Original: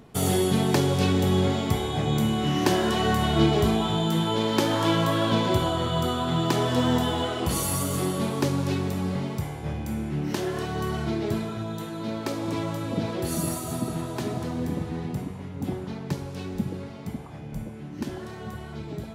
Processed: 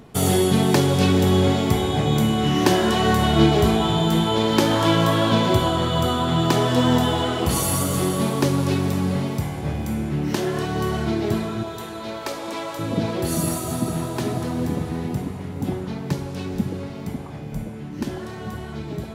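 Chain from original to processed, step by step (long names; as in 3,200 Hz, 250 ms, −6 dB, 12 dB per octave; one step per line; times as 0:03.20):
0:11.63–0:12.79: high-pass filter 500 Hz 12 dB per octave
feedback delay with all-pass diffusion 490 ms, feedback 47%, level −14 dB
level +4.5 dB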